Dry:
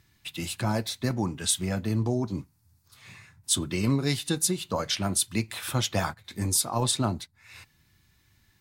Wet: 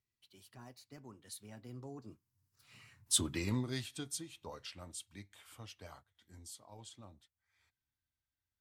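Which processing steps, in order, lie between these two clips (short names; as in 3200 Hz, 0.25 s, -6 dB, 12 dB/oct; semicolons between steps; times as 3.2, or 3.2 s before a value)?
Doppler pass-by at 3.18, 39 m/s, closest 10 m; bell 170 Hz -8.5 dB 0.35 oct; gain -5 dB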